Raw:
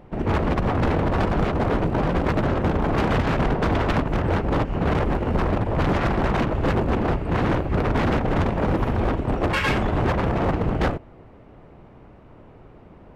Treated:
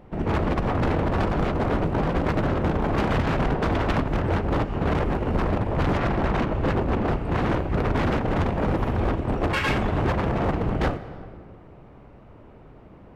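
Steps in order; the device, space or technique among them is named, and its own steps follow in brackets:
compressed reverb return (on a send at −6 dB: convolution reverb RT60 1.5 s, pre-delay 14 ms + downward compressor, threshold −24 dBFS, peak gain reduction 11 dB)
0:05.97–0:07.06: on the sum: high-shelf EQ 6,000 Hz −5.5 dB
level −2 dB

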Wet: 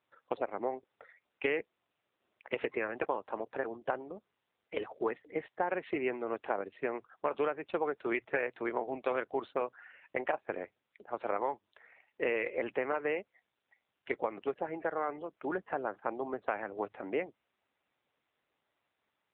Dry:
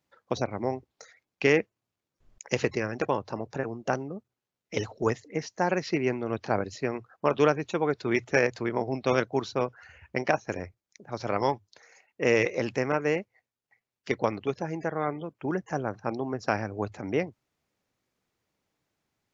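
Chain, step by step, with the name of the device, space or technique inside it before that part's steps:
voicemail (band-pass filter 390–3,000 Hz; downward compressor 8 to 1, threshold −27 dBFS, peak gain reduction 9.5 dB; AMR narrowband 7.4 kbit/s 8,000 Hz)

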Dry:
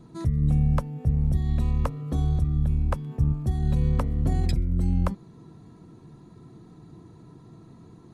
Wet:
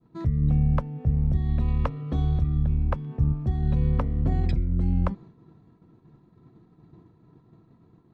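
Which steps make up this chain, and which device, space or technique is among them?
hearing-loss simulation (low-pass filter 3,100 Hz 12 dB per octave; downward expander −41 dBFS)
0:01.68–0:02.63: parametric band 3,400 Hz +5 dB 2 octaves

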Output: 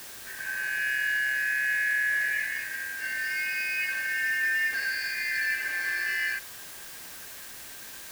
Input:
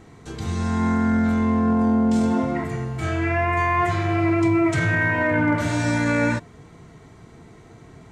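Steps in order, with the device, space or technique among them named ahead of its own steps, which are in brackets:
split-band scrambled radio (band-splitting scrambler in four parts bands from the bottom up 3142; band-pass filter 320–2,800 Hz; white noise bed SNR 13 dB)
level −7.5 dB

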